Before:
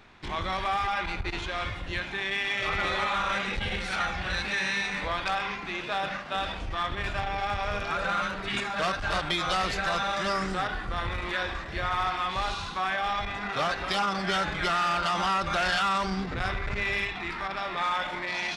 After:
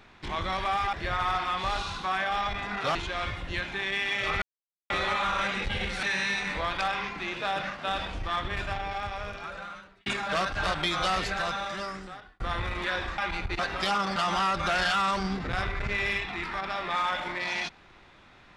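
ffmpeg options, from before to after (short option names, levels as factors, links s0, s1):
-filter_complex "[0:a]asplit=10[s0][s1][s2][s3][s4][s5][s6][s7][s8][s9];[s0]atrim=end=0.932[s10];[s1]atrim=start=11.648:end=13.672[s11];[s2]atrim=start=1.338:end=2.81,asetpts=PTS-STARTPTS,afade=t=out:st=1.468:d=0.004:c=hsin,apad=pad_dur=0.48[s12];[s3]atrim=start=2.81:end=3.942,asetpts=PTS-STARTPTS,afade=t=in:d=0.004:c=hsin[s13];[s4]atrim=start=4.498:end=8.53,asetpts=PTS-STARTPTS,afade=t=out:st=2.402:d=1.63[s14];[s5]atrim=start=8.53:end=10.87,asetpts=PTS-STARTPTS,afade=t=in:d=0.004:c=hsin,afade=t=out:st=1.08:d=1.26[s15];[s6]atrim=start=10.87:end=11.652,asetpts=PTS-STARTPTS,afade=t=in:d=0.004:c=hsin[s16];[s7]atrim=start=0.928:end=1.342[s17];[s8]atrim=start=13.668:end=14.242[s18];[s9]atrim=start=15.028[s19];[s10][s11]acrossfade=d=0.004:c1=hsin:c2=hsin[s20];[s12][s13]concat=n=2:v=0:a=1[s21];[s20][s21]acrossfade=d=0.004:c1=hsin:c2=hsin[s22];[s14][s15][s16]concat=n=3:v=0:a=1[s23];[s22][s23]acrossfade=d=0.004:c1=hsin:c2=hsin[s24];[s24][s17]acrossfade=d=0.004:c1=hsin:c2=hsin[s25];[s25][s18]acrossfade=d=0.004:c1=hsin:c2=hsin[s26];[s26][s19]acrossfade=d=0.004:c1=hsin:c2=hsin"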